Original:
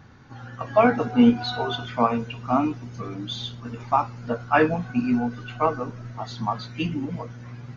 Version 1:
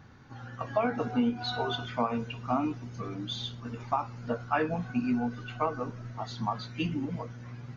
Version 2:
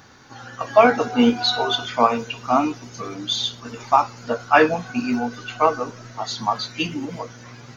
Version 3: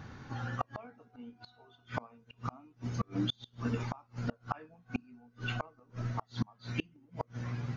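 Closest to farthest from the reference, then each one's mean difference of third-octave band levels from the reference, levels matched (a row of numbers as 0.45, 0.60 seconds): 1, 2, 3; 3.0, 4.0, 11.5 decibels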